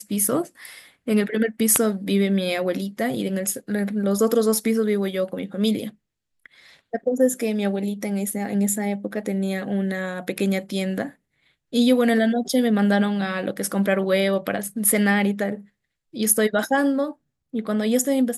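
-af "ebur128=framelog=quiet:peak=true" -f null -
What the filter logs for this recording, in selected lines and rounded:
Integrated loudness:
  I:         -22.4 LUFS
  Threshold: -32.9 LUFS
Loudness range:
  LRA:         4.3 LU
  Threshold: -43.0 LUFS
  LRA low:   -25.4 LUFS
  LRA high:  -21.1 LUFS
True peak:
  Peak:       -0.9 dBFS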